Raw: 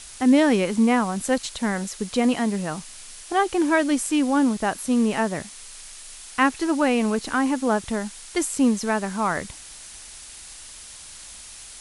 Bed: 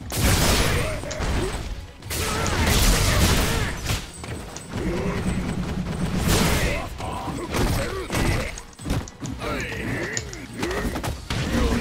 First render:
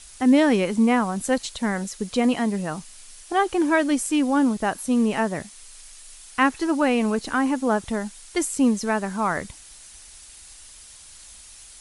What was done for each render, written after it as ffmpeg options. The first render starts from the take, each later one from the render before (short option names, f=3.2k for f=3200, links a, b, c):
-af "afftdn=nr=6:nf=-42"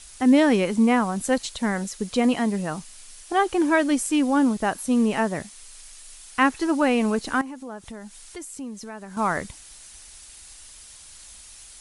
-filter_complex "[0:a]asettb=1/sr,asplit=3[a][b][c];[a]atrim=end=7.414[d];[b]atrim=start=7.41:end=9.17,asetpts=PTS-STARTPTS,afade=t=in:d=0.004:c=qsin,afade=t=out:st=1.756:d=0.004:c=qsin,acompressor=threshold=-40dB:ratio=2.5:attack=3.2:release=140:knee=1:detection=peak[e];[c]atrim=start=9.166[f];[d][e]acrossfade=d=0.004:c1=hsin:c2=qsin[g];[g][f]acrossfade=d=0.004:c1=qsin:c2=hsin"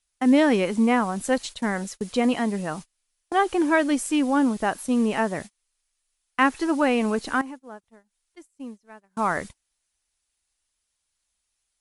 -af "agate=range=-30dB:threshold=-34dB:ratio=16:detection=peak,bass=f=250:g=-3,treble=f=4k:g=-3"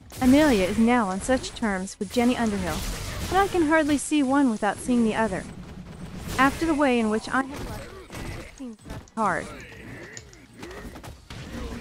-filter_complex "[1:a]volume=-13dB[a];[0:a][a]amix=inputs=2:normalize=0"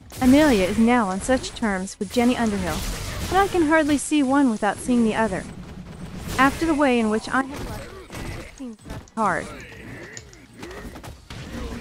-af "volume=2.5dB"